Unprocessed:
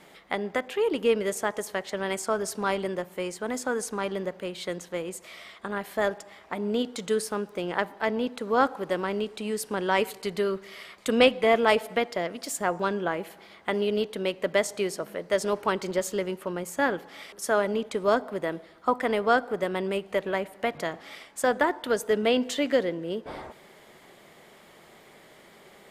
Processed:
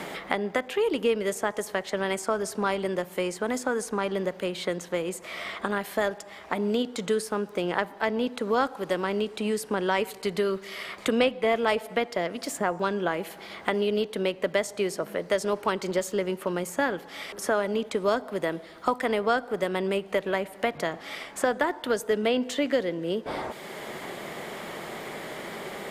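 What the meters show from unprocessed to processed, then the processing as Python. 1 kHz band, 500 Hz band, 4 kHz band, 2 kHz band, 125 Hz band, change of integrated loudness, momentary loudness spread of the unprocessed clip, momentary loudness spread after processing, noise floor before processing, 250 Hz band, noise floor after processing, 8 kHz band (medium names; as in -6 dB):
-0.5 dB, 0.0 dB, 0.0 dB, 0.0 dB, +1.5 dB, -0.5 dB, 11 LU, 11 LU, -53 dBFS, +0.5 dB, -46 dBFS, -1.0 dB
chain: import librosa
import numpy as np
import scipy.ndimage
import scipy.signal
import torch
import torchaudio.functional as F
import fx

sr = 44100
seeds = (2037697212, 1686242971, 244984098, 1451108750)

y = fx.band_squash(x, sr, depth_pct=70)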